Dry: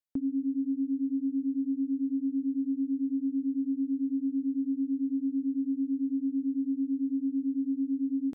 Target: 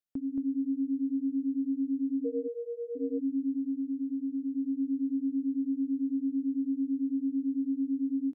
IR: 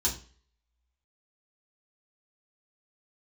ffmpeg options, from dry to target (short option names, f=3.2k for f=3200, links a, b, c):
-filter_complex "[0:a]asplit=3[a][b][c];[a]afade=t=out:st=2.24:d=0.02[d];[b]afreqshift=200,afade=t=in:st=2.24:d=0.02,afade=t=out:st=2.95:d=0.02[e];[c]afade=t=in:st=2.95:d=0.02[f];[d][e][f]amix=inputs=3:normalize=0,asettb=1/sr,asplit=3[g][h][i];[g]atrim=end=3.524[j];[h]atrim=start=3.52:end=4.55,asetpts=PTS-STARTPTS,afade=t=in:d=0.004:c=qsin,afade=t=out:st=1.026:d=0.004:c=qsin,acompressor=threshold=-29dB:ratio=6[k];[i]atrim=start=4.546[l];[j][k]acrossfade=d=0.004:c1=hsin:c2=qsin[m];[m][l]acrossfade=d=0.004:c1=qsin:c2=hsin,aecho=1:1:224:0.668,volume=-3.5dB"